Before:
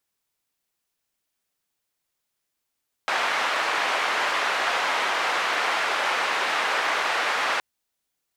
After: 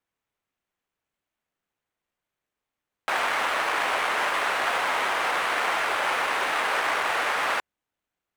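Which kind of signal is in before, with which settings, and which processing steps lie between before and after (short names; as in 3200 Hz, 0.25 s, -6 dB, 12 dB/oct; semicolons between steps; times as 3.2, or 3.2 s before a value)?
noise band 700–1800 Hz, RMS -24.5 dBFS 4.52 s
median filter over 9 samples; notch 7100 Hz, Q 30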